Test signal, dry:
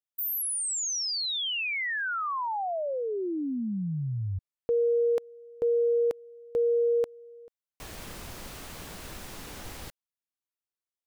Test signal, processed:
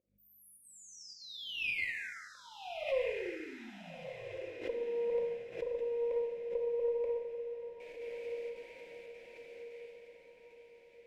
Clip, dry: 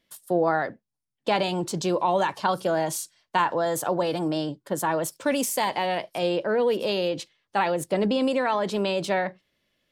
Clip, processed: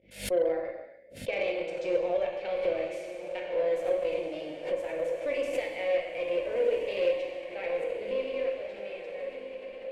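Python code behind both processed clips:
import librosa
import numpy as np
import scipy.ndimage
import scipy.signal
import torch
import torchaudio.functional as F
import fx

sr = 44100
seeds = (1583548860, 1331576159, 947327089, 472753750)

p1 = fx.fade_out_tail(x, sr, length_s=2.97)
p2 = fx.add_hum(p1, sr, base_hz=50, snr_db=20)
p3 = fx.volume_shaper(p2, sr, bpm=106, per_beat=1, depth_db=-18, release_ms=80.0, shape='slow start')
p4 = fx.double_bandpass(p3, sr, hz=1100.0, octaves=2.1)
p5 = fx.rev_gated(p4, sr, seeds[0], gate_ms=450, shape='falling', drr_db=-1.0)
p6 = fx.cheby_harmonics(p5, sr, harmonics=(3, 4, 8), levels_db=(-26, -43, -35), full_scale_db=-16.0)
p7 = p6 + fx.echo_diffused(p6, sr, ms=1332, feedback_pct=44, wet_db=-8.5, dry=0)
y = fx.pre_swell(p7, sr, db_per_s=130.0)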